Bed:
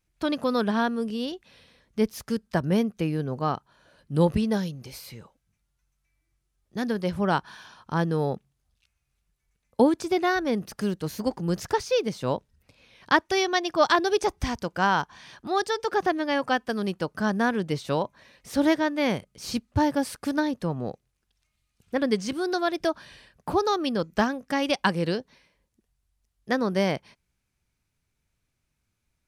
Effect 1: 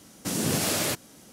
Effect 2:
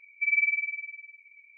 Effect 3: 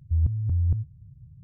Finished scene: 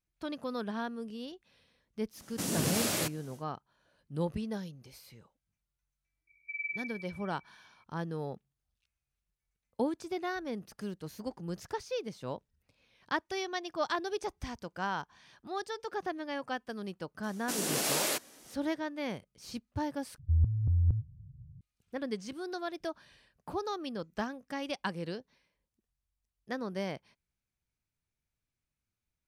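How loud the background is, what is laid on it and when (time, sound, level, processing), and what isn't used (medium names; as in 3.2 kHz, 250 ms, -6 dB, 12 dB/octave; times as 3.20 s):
bed -12 dB
2.13 s: add 1 -5 dB, fades 0.10 s
6.27 s: add 2 -13 dB
17.23 s: add 1 -3.5 dB + high-pass 340 Hz
20.18 s: replace with 3 -3.5 dB + local Wiener filter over 15 samples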